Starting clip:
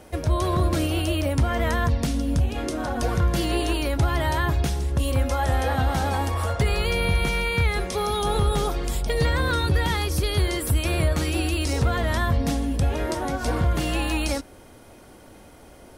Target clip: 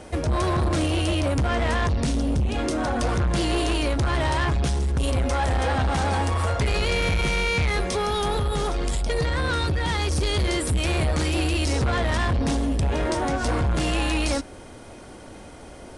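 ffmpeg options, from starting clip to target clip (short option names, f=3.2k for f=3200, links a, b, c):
-filter_complex "[0:a]asettb=1/sr,asplit=3[a][b][c];[a]atrim=end=7.814[d];[b]atrim=start=7.81:end=10.06,asetpts=PTS-STARTPTS,afade=t=in:d=0.004:c=qsin,afade=t=out:st=2.246:d=0.004:c=qsin,acompressor=threshold=-22dB:ratio=6[e];[c]atrim=start=10.056[f];[d][e]acrossfade=d=0.004:c1=hsin:c2=qsin[g];[g][f]acrossfade=d=0.004:c1=qsin:c2=hsin,asoftclip=type=tanh:threshold=-24.5dB,aresample=22050,aresample=44100,volume=5.5dB"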